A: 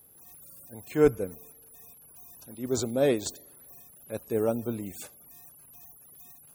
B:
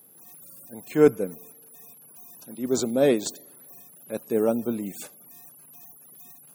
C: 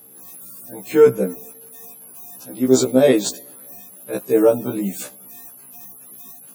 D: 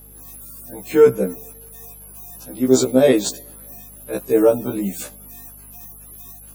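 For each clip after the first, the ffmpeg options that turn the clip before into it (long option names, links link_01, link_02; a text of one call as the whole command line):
ffmpeg -i in.wav -af "lowshelf=frequency=120:width_type=q:width=1.5:gain=-13.5,volume=3dB" out.wav
ffmpeg -i in.wav -af "alimiter=level_in=11.5dB:limit=-1dB:release=50:level=0:latency=1,afftfilt=real='re*1.73*eq(mod(b,3),0)':imag='im*1.73*eq(mod(b,3),0)':win_size=2048:overlap=0.75,volume=-1dB" out.wav
ffmpeg -i in.wav -af "aeval=exprs='val(0)+0.00501*(sin(2*PI*50*n/s)+sin(2*PI*2*50*n/s)/2+sin(2*PI*3*50*n/s)/3+sin(2*PI*4*50*n/s)/4+sin(2*PI*5*50*n/s)/5)':channel_layout=same" out.wav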